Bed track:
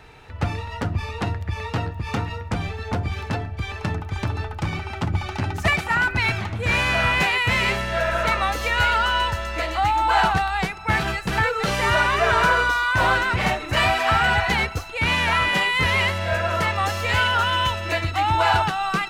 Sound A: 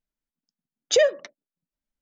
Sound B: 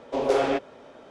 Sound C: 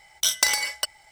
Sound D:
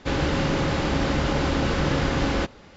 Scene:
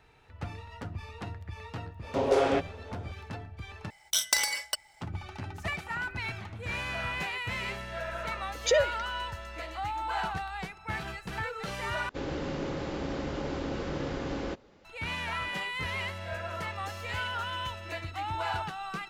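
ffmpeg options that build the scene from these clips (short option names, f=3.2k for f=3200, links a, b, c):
-filter_complex "[0:a]volume=-14dB[a];[4:a]equalizer=f=420:t=o:w=1.6:g=6.5[b];[a]asplit=3[c][d][e];[c]atrim=end=3.904[f];[3:a]atrim=end=1.11,asetpts=PTS-STARTPTS,volume=-5dB[g];[d]atrim=start=5.006:end=12.094[h];[b]atrim=end=2.76,asetpts=PTS-STARTPTS,volume=-14dB[i];[e]atrim=start=14.846[j];[2:a]atrim=end=1.1,asetpts=PTS-STARTPTS,volume=-2dB,afade=t=in:d=0.004:c=hsin,afade=t=out:st=1.096:d=0.004:c=hsin,adelay=2020[k];[1:a]atrim=end=2.01,asetpts=PTS-STARTPTS,volume=-6dB,afade=t=in:d=0.004:c=hsin,afade=t=out:st=2.006:d=0.004:c=hsin,adelay=7750[l];[f][g]acrossfade=d=0.004:c1=hsin:c2=hsin[m];[m][h]acrossfade=d=0.004:c1=hsin:c2=hsin[n];[n][i]acrossfade=d=0.004:c1=hsin:c2=hsin[o];[o][j]acrossfade=d=0.004:c1=hsin:c2=hsin[p];[p][k][l]amix=inputs=3:normalize=0"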